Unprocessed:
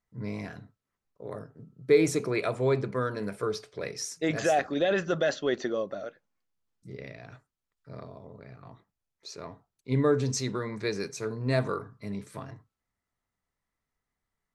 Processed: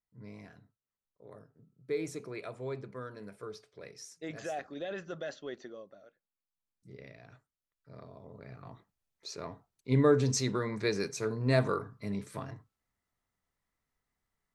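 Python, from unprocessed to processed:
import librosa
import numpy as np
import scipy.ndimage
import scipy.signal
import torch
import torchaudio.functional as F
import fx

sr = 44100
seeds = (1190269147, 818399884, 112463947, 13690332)

y = fx.gain(x, sr, db=fx.line((5.44, -13.0), (6.04, -20.0), (6.93, -8.0), (7.93, -8.0), (8.53, 0.0)))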